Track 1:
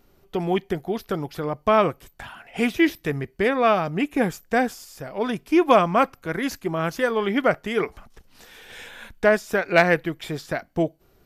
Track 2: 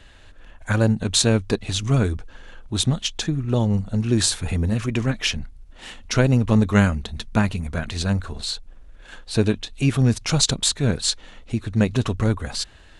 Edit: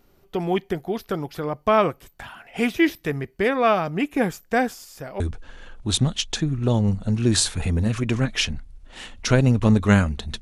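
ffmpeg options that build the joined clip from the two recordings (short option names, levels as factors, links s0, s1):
-filter_complex "[0:a]apad=whole_dur=10.41,atrim=end=10.41,atrim=end=5.202[s0];[1:a]atrim=start=2.058:end=7.27[s1];[s0][s1]acrossfade=d=0.004:c1=hsin:c2=hsin"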